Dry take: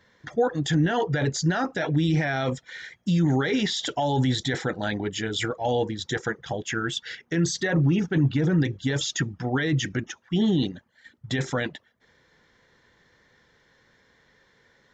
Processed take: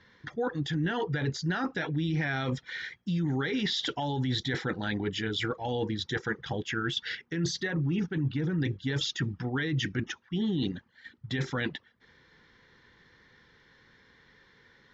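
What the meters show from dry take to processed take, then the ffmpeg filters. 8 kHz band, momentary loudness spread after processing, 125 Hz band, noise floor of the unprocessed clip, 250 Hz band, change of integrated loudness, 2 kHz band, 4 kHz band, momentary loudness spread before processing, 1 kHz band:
-10.0 dB, 6 LU, -6.0 dB, -63 dBFS, -6.0 dB, -5.5 dB, -3.5 dB, -3.0 dB, 8 LU, -7.0 dB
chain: -af "lowpass=f=5300:w=0.5412,lowpass=f=5300:w=1.3066,equalizer=f=630:w=2.6:g=-9.5,areverse,acompressor=threshold=0.0316:ratio=4,areverse,volume=1.26"

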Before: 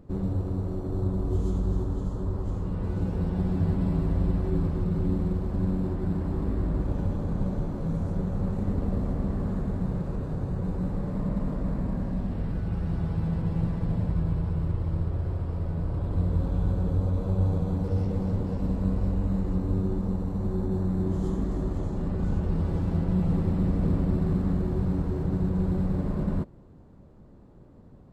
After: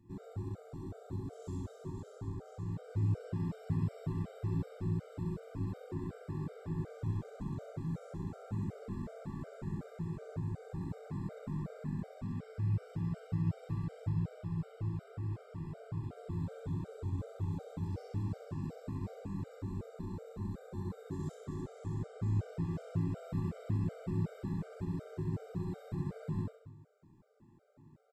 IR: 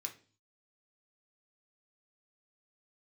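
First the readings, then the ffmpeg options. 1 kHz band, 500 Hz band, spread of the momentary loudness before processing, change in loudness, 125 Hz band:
-10.0 dB, -11.5 dB, 5 LU, -11.0 dB, -10.0 dB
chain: -filter_complex "[0:a]aecho=1:1:66|132|198|264|330|396|462:0.708|0.368|0.191|0.0995|0.0518|0.0269|0.014[s0];[1:a]atrim=start_sample=2205[s1];[s0][s1]afir=irnorm=-1:irlink=0,afftfilt=real='re*gt(sin(2*PI*2.7*pts/sr)*(1-2*mod(floor(b*sr/1024/400),2)),0)':imag='im*gt(sin(2*PI*2.7*pts/sr)*(1-2*mod(floor(b*sr/1024/400),2)),0)':win_size=1024:overlap=0.75,volume=0.596"

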